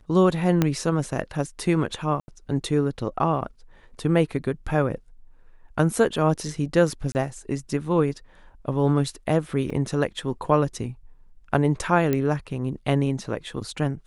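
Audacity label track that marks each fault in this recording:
0.620000	0.620000	pop -7 dBFS
2.200000	2.280000	dropout 80 ms
7.120000	7.150000	dropout 29 ms
9.700000	9.700000	dropout 3.3 ms
12.130000	12.130000	pop -11 dBFS

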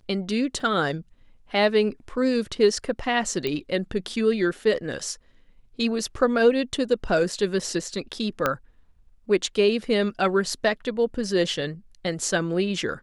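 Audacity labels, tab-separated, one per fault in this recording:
0.600000	0.600000	dropout 2.3 ms
3.470000	3.470000	pop -14 dBFS
8.460000	8.460000	pop -8 dBFS

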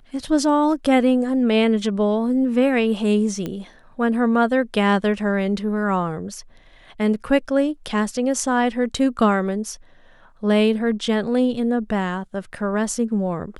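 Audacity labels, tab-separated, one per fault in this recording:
3.460000	3.460000	pop -15 dBFS

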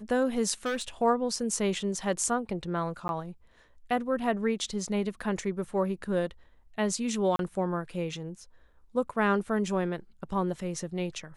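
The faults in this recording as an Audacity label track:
0.650000	0.880000	clipped -27 dBFS
3.080000	3.090000	dropout 11 ms
7.360000	7.390000	dropout 32 ms

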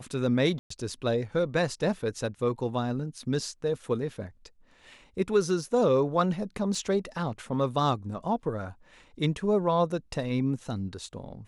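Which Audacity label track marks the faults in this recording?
0.590000	0.700000	dropout 114 ms
6.750000	6.750000	dropout 2.9 ms

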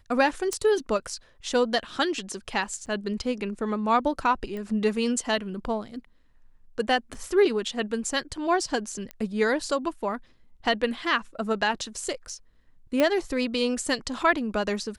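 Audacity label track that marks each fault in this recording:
0.530000	0.530000	pop
2.860000	2.870000	dropout 8.1 ms
4.570000	4.570000	pop -25 dBFS
7.140000	7.140000	dropout 2.7 ms
9.110000	9.110000	pop -20 dBFS
13.000000	13.000000	pop -10 dBFS

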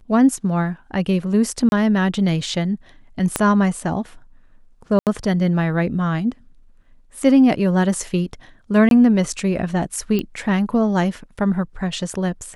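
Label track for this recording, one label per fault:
1.690000	1.720000	dropout 31 ms
3.360000	3.360000	pop -4 dBFS
4.990000	5.070000	dropout 78 ms
8.890000	8.910000	dropout 22 ms
10.190000	10.190000	pop -11 dBFS

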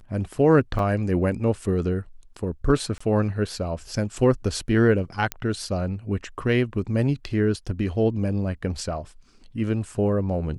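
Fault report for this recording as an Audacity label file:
0.790000	0.790000	dropout 2.1 ms
2.980000	3.000000	dropout 25 ms
5.320000	5.320000	pop -10 dBFS

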